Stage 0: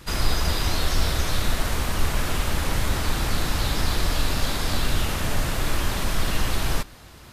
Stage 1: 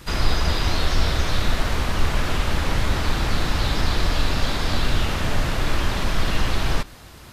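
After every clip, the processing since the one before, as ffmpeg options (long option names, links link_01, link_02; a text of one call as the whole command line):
ffmpeg -i in.wav -filter_complex "[0:a]acrossover=split=5900[link_01][link_02];[link_02]acompressor=threshold=-48dB:ratio=4:attack=1:release=60[link_03];[link_01][link_03]amix=inputs=2:normalize=0,volume=2.5dB" out.wav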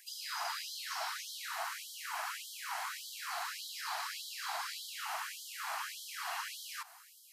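ffmpeg -i in.wav -af "equalizer=frequency=3100:width_type=o:width=2.5:gain=-12,bandreject=frequency=3600:width=12,afftfilt=real='re*gte(b*sr/1024,640*pow(3100/640,0.5+0.5*sin(2*PI*1.7*pts/sr)))':imag='im*gte(b*sr/1024,640*pow(3100/640,0.5+0.5*sin(2*PI*1.7*pts/sr)))':win_size=1024:overlap=0.75,volume=-2dB" out.wav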